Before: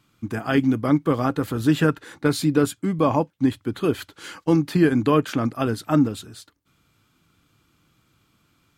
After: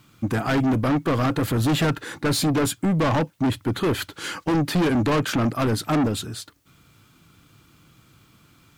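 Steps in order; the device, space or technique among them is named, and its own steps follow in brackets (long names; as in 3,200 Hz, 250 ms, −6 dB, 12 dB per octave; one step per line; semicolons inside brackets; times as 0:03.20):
open-reel tape (soft clipping −26 dBFS, distortion −5 dB; parametric band 130 Hz +3 dB 0.86 octaves; white noise bed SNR 46 dB)
level +7.5 dB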